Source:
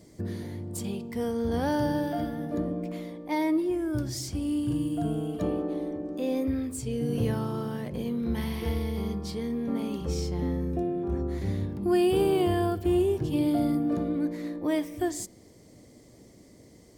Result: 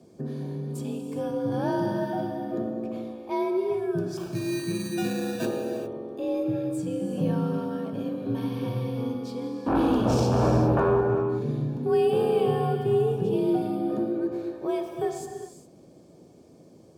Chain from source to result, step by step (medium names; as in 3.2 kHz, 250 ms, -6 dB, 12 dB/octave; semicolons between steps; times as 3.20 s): treble shelf 3.2 kHz -10 dB; 4.17–5.46 s: sample-rate reducer 2.1 kHz, jitter 0%; 9.66–11.01 s: sine folder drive 9 dB, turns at -19.5 dBFS; frequency shift +49 Hz; Butterworth band-stop 2 kHz, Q 4.5; gated-style reverb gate 430 ms flat, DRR 4 dB